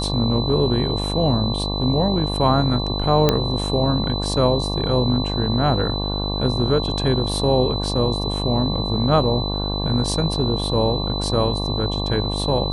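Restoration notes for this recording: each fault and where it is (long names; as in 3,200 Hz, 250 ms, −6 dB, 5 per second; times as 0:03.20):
mains buzz 50 Hz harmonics 23 −25 dBFS
whistle 4,000 Hz −27 dBFS
0:03.29: click −2 dBFS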